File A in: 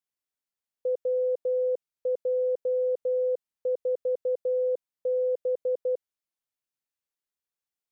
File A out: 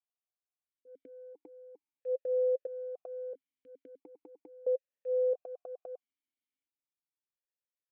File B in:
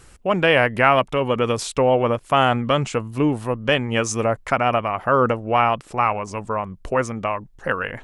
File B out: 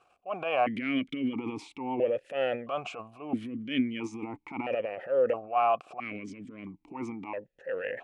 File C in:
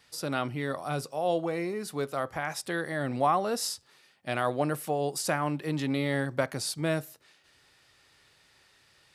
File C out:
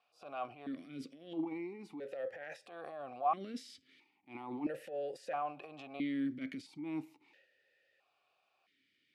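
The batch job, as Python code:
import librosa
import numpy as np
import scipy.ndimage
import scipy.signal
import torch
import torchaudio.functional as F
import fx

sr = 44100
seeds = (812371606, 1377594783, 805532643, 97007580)

y = fx.transient(x, sr, attack_db=-10, sustain_db=9)
y = fx.vowel_held(y, sr, hz=1.5)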